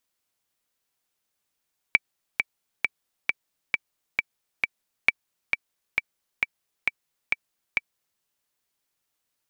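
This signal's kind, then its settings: metronome 134 bpm, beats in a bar 7, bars 2, 2.31 kHz, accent 5.5 dB -3 dBFS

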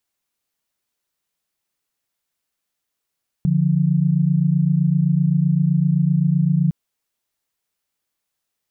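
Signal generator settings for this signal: chord D3/F3 sine, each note -17 dBFS 3.26 s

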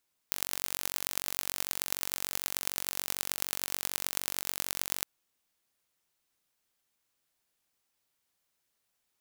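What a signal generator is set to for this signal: pulse train 46.7 per s, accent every 5, -2 dBFS 4.73 s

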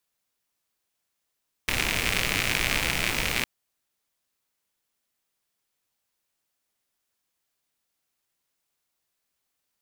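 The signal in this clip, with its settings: rain from filtered ticks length 1.76 s, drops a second 110, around 2.3 kHz, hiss -2 dB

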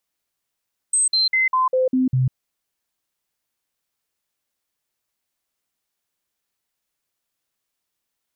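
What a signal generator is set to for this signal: stepped sine 8.24 kHz down, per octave 1, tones 7, 0.15 s, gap 0.05 s -15 dBFS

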